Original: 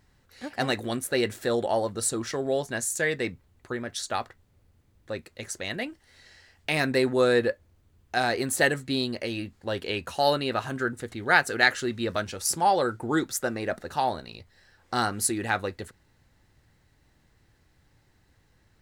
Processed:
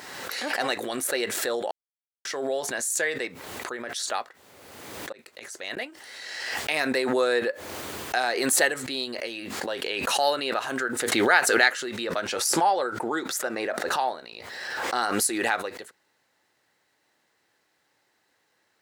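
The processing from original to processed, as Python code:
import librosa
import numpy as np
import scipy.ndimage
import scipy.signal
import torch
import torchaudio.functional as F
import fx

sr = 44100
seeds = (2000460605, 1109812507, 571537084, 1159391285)

y = fx.gate_flip(x, sr, shuts_db=-35.0, range_db=-32, at=(5.12, 5.77))
y = fx.high_shelf(y, sr, hz=4600.0, db=-5.5, at=(12.07, 15.03))
y = fx.edit(y, sr, fx.silence(start_s=1.71, length_s=0.54), tone=tone)
y = scipy.signal.sosfilt(scipy.signal.butter(2, 450.0, 'highpass', fs=sr, output='sos'), y)
y = fx.pre_swell(y, sr, db_per_s=31.0)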